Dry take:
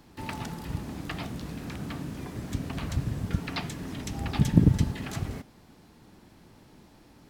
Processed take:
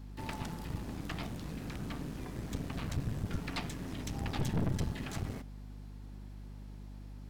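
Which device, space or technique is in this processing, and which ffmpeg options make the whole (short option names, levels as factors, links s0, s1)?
valve amplifier with mains hum: -af "aeval=exprs='(tanh(22.4*val(0)+0.65)-tanh(0.65))/22.4':c=same,aeval=exprs='val(0)+0.00631*(sin(2*PI*50*n/s)+sin(2*PI*2*50*n/s)/2+sin(2*PI*3*50*n/s)/3+sin(2*PI*4*50*n/s)/4+sin(2*PI*5*50*n/s)/5)':c=same,volume=0.841"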